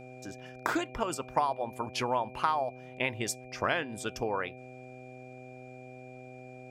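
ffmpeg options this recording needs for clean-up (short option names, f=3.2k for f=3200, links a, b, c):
-af "bandreject=f=127.1:t=h:w=4,bandreject=f=254.2:t=h:w=4,bandreject=f=381.3:t=h:w=4,bandreject=f=508.4:t=h:w=4,bandreject=f=635.5:t=h:w=4,bandreject=f=762.6:t=h:w=4,bandreject=f=2.4k:w=30"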